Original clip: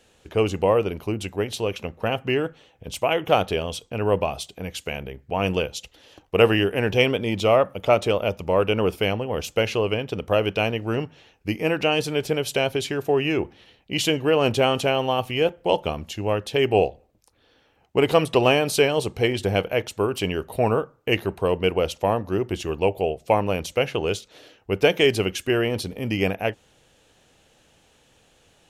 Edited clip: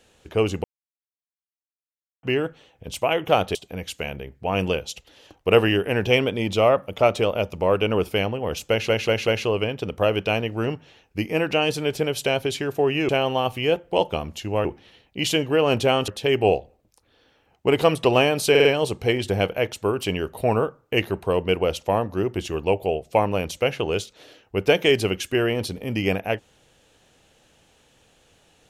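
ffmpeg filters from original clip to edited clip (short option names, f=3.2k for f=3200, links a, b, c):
-filter_complex "[0:a]asplit=13[a][b][c][d][e][f][g][h][i][j][k][l][m];[a]atrim=end=0.64,asetpts=PTS-STARTPTS,afade=t=out:st=0.636:d=0.004:c=hsin[n];[b]atrim=start=0.64:end=2.23,asetpts=PTS-STARTPTS,volume=0[o];[c]atrim=start=2.23:end=3.552,asetpts=PTS-STARTPTS,afade=t=in:d=0.004:c=hsin[p];[d]atrim=start=4.418:end=9.762[q];[e]atrim=start=9.568:end=9.762[r];[f]atrim=start=9.568:end=9.762[s];[g]atrim=start=9.568:end=13.392[t];[h]atrim=start=14.818:end=16.382[u];[i]atrim=start=13.388:end=14.822[v];[j]atrim=start=16.378:end=18.852[w];[k]atrim=start=18.798:end=18.852[x];[l]atrim=start=18.798:end=18.852[y];[m]atrim=start=18.798[z];[n][o][p]concat=n=3:v=0:a=1[aa];[aa][q]acrossfade=d=0.004:c1=hsin:c2=hsin[ab];[ab][r]acrossfade=d=0.004:c1=hsin:c2=hsin[ac];[ac][s]acrossfade=d=0.004:c1=hsin:c2=hsin[ad];[ad][t]acrossfade=d=0.004:c1=hsin:c2=hsin[ae];[ae][u]acrossfade=d=0.004:c1=hsin:c2=hsin[af];[af][v]acrossfade=d=0.004:c1=hsin:c2=hsin[ag];[ag][w]acrossfade=d=0.004:c1=hsin:c2=hsin[ah];[ah][x]acrossfade=d=0.004:c1=hsin:c2=hsin[ai];[ai][y]acrossfade=d=0.004:c1=hsin:c2=hsin[aj];[aj][z]acrossfade=d=0.004:c1=hsin:c2=hsin"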